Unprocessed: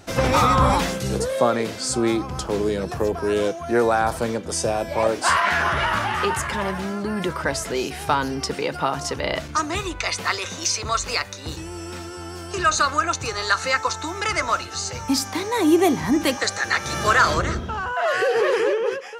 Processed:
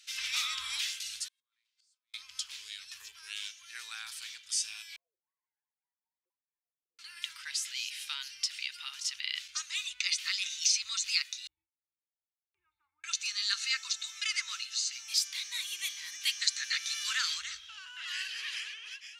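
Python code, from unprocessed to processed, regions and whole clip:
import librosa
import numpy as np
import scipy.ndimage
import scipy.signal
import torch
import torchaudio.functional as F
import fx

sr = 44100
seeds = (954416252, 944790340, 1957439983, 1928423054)

y = fx.chain(x, sr, fx.over_compress(threshold_db=-22.0, ratio=-0.5),
    fx.gate_flip(shuts_db=-21.0, range_db=-33),
    fx.ladder_highpass(hz=910.0, resonance_pct=75), at=(1.28, 2.14))
y = fx.chain(y, sr, fx.sine_speech(),
    fx.cheby2_lowpass(hz=1200.0, order=4, stop_db=60),
    fx.ring_mod(carrier_hz=81.0), at=(4.96, 6.99))
y = fx.chain(y, sr, fx.formant_cascade(vowel='u'),
    fx.gate_hold(open_db=-32.0, close_db=-42.0, hold_ms=71.0, range_db=-21, attack_ms=1.4, release_ms=100.0), at=(11.47, 13.04))
y = scipy.signal.sosfilt(scipy.signal.cheby2(4, 70, 660.0, 'highpass', fs=sr, output='sos'), y)
y = fx.tilt_eq(y, sr, slope=-4.5)
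y = F.gain(torch.from_numpy(y), 7.5).numpy()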